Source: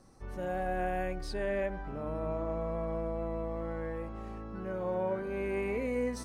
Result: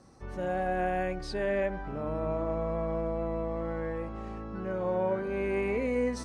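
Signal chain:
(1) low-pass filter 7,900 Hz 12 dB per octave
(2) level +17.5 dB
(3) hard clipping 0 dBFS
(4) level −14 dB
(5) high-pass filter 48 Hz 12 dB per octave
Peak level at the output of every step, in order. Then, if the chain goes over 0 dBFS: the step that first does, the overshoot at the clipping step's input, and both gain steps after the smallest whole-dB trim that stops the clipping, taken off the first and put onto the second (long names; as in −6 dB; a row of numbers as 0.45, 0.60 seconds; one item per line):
−22.5, −5.0, −5.0, −19.0, −19.5 dBFS
no step passes full scale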